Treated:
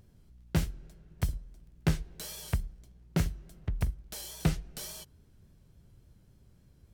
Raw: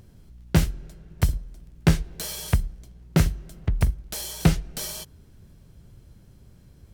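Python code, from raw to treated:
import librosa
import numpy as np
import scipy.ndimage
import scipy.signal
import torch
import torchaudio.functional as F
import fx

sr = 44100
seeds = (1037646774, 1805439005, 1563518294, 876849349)

y = fx.vibrato(x, sr, rate_hz=3.5, depth_cents=47.0)
y = F.gain(torch.from_numpy(y), -9.0).numpy()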